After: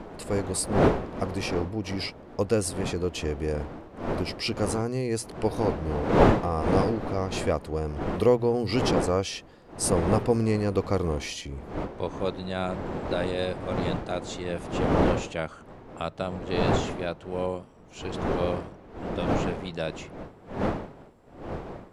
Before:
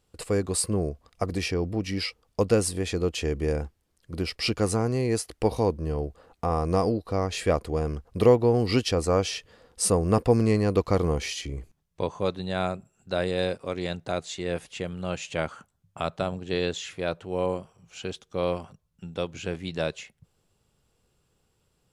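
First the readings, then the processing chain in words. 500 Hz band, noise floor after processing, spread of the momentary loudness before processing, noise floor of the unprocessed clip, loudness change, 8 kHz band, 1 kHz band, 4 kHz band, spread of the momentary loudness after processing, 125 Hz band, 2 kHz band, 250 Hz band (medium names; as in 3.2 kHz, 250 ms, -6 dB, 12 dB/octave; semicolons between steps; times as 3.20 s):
-0.5 dB, -50 dBFS, 11 LU, -72 dBFS, -0.5 dB, -2.5 dB, +2.5 dB, -2.0 dB, 14 LU, -0.5 dB, +0.5 dB, +1.0 dB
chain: wind noise 540 Hz -28 dBFS; hum notches 60/120 Hz; trim -2.5 dB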